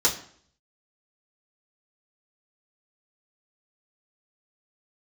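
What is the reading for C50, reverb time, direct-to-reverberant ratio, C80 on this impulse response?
11.0 dB, 0.55 s, −6.5 dB, 14.5 dB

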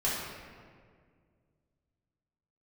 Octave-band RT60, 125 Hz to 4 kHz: 2.9, 2.5, 2.2, 1.7, 1.6, 1.1 seconds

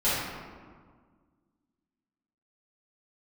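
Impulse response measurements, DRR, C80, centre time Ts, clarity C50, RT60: −13.5 dB, 0.5 dB, 107 ms, −2.5 dB, 1.7 s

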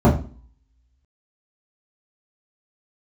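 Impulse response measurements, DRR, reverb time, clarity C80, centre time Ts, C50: −8.0 dB, 0.40 s, 14.5 dB, 25 ms, 10.0 dB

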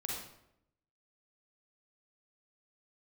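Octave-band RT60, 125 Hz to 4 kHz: 1.0, 0.95, 0.85, 0.75, 0.65, 0.55 seconds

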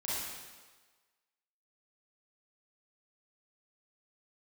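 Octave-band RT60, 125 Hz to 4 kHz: 1.1, 1.2, 1.4, 1.4, 1.3, 1.3 seconds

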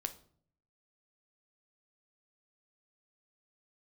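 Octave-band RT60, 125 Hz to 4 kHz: 0.90, 0.75, 0.60, 0.50, 0.40, 0.40 seconds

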